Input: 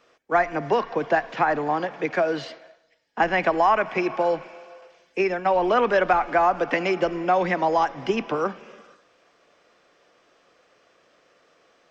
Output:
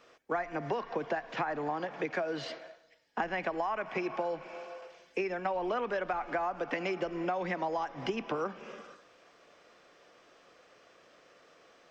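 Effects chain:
downward compressor 6 to 1, threshold −31 dBFS, peak gain reduction 15.5 dB

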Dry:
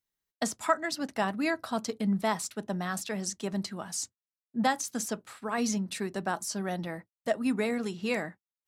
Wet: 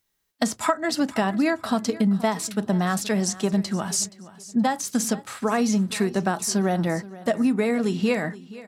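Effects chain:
harmonic and percussive parts rebalanced harmonic +7 dB
downward compressor 10 to 1, threshold −26 dBFS, peak gain reduction 12.5 dB
repeating echo 474 ms, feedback 30%, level −18 dB
level +8 dB

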